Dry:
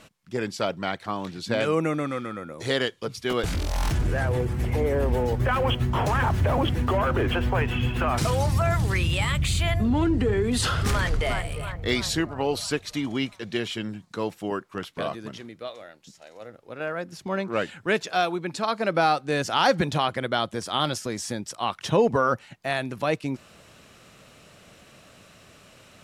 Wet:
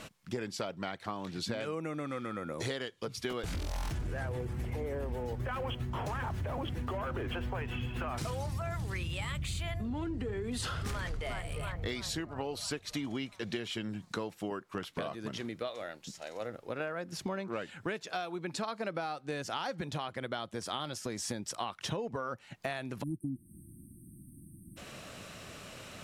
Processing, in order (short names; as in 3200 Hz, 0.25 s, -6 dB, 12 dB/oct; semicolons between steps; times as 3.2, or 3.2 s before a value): spectral delete 23.03–24.77, 350–8300 Hz; compressor 16:1, threshold -37 dBFS, peak gain reduction 22.5 dB; gain +4 dB